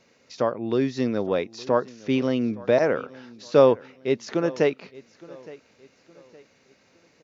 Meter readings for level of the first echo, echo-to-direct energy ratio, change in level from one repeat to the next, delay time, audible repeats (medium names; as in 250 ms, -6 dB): -21.0 dB, -20.5 dB, -8.5 dB, 865 ms, 2